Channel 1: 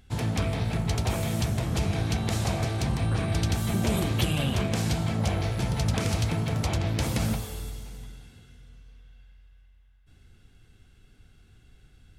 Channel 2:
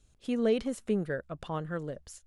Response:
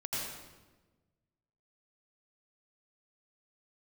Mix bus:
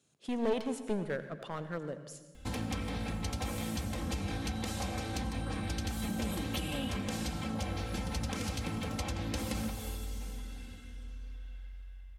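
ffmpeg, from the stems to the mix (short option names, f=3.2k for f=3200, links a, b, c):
-filter_complex "[0:a]aecho=1:1:3.8:0.82,acompressor=threshold=-37dB:ratio=3,adelay=2350,volume=0dB,asplit=2[a][b];[b]volume=-16dB[c];[1:a]highpass=f=140:w=0.5412,highpass=f=140:w=1.3066,aeval=exprs='clip(val(0),-1,0.0266)':c=same,volume=-2.5dB,asplit=2[d][e];[e]volume=-12.5dB[f];[2:a]atrim=start_sample=2205[g];[c][f]amix=inputs=2:normalize=0[h];[h][g]afir=irnorm=-1:irlink=0[i];[a][d][i]amix=inputs=3:normalize=0"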